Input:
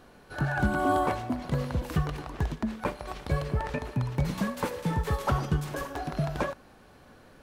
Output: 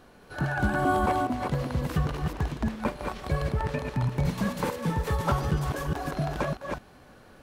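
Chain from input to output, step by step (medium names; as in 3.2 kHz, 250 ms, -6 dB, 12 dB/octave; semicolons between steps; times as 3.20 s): chunks repeated in reverse 212 ms, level -3.5 dB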